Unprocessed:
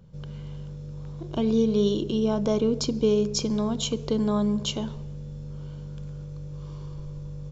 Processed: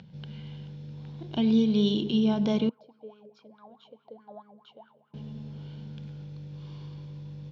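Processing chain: upward compressor, threshold -42 dBFS; bell 530 Hz -14 dB 2.4 oct; darkening echo 0.1 s, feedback 84%, low-pass 3000 Hz, level -17 dB; 2.69–5.14 wah 4.7 Hz 510–1400 Hz, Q 13; speaker cabinet 180–4200 Hz, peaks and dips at 220 Hz +4 dB, 770 Hz +7 dB, 1200 Hz -9 dB; gain +6 dB

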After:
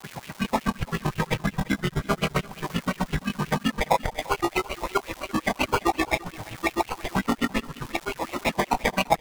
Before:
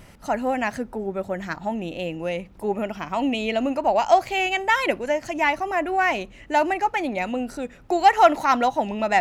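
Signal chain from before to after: chord vocoder minor triad, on A#2; in parallel at -7.5 dB: Schmitt trigger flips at -30 dBFS; on the sum: auto swell 0.626 s; tilt -2.5 dB/oct; doubler 31 ms -10.5 dB; on a send at -9 dB: reverb, pre-delay 3 ms; on the sum: sample-rate reducer 1600 Hz, jitter 0%; grains 83 ms, grains 7.7/s, pitch spread up and down by 3 st; crackle 460/s -39 dBFS; compressor 6:1, threshold -31 dBFS, peak gain reduction 16 dB; echo 0.34 s -20 dB; LFO bell 5.6 Hz 800–2800 Hz +12 dB; gain +7.5 dB

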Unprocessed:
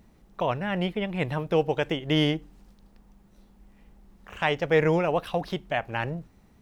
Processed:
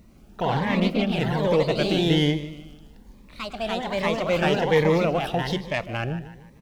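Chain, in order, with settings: in parallel at -3 dB: soft clip -24.5 dBFS, distortion -8 dB; on the sum: feedback echo 0.152 s, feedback 43%, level -14 dB; echoes that change speed 90 ms, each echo +2 st, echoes 3; 5.46–5.86 dynamic EQ 5400 Hz, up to +7 dB, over -46 dBFS, Q 0.71; cascading phaser rising 1.2 Hz

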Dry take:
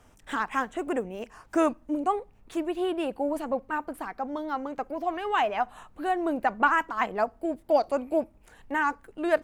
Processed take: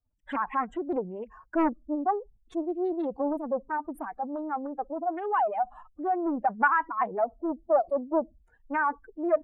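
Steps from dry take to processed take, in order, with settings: spectral contrast raised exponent 2.3; expander -46 dBFS; Doppler distortion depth 0.52 ms

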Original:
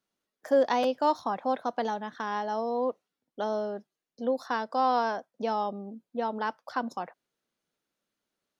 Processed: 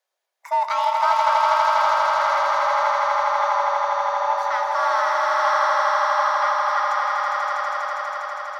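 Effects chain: frequency shift +360 Hz; in parallel at -7.5 dB: soft clip -27.5 dBFS, distortion -8 dB; on the sum: swelling echo 81 ms, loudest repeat 8, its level -3.5 dB

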